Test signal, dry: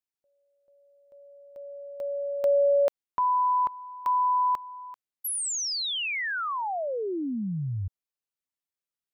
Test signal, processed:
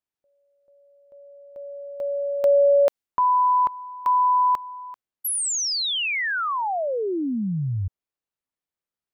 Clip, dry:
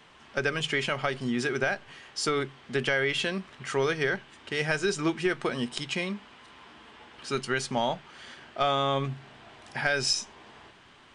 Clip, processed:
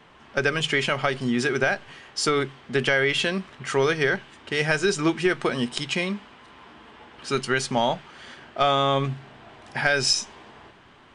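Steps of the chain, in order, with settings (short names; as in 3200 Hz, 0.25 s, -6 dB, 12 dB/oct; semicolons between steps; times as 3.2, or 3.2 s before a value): mismatched tape noise reduction decoder only; gain +5 dB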